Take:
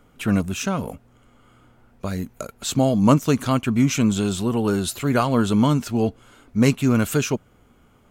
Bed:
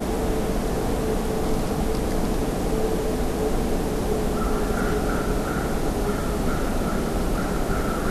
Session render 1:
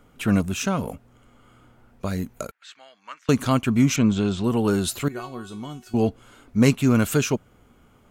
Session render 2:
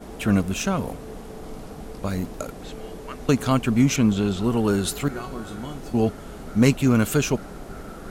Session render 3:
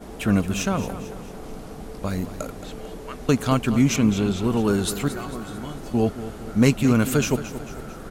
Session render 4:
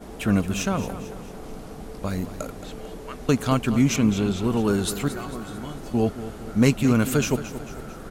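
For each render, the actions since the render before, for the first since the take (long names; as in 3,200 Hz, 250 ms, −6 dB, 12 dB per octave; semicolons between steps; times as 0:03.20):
0:02.51–0:03.29: four-pole ladder band-pass 2,000 Hz, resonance 55%; 0:03.96–0:04.44: high-frequency loss of the air 130 metres; 0:05.08–0:05.94: tuned comb filter 370 Hz, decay 0.3 s, mix 90%
mix in bed −13.5 dB
repeating echo 223 ms, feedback 50%, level −13 dB
level −1 dB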